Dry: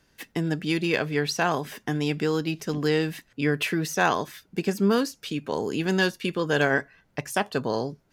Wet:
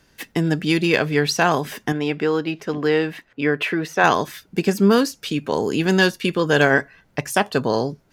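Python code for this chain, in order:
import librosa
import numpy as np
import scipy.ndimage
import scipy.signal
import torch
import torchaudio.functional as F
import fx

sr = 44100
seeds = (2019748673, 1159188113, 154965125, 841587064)

y = fx.bass_treble(x, sr, bass_db=-9, treble_db=-14, at=(1.92, 4.04))
y = F.gain(torch.from_numpy(y), 6.5).numpy()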